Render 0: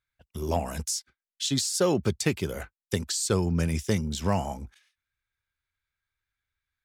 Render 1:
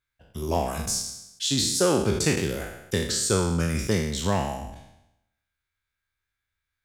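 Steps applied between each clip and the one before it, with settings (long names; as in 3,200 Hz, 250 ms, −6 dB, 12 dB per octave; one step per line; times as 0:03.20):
peak hold with a decay on every bin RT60 0.85 s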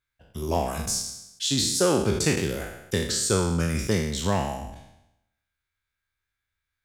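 no processing that can be heard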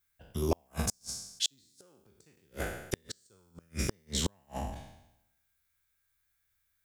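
gate with flip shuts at −16 dBFS, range −41 dB
background noise violet −78 dBFS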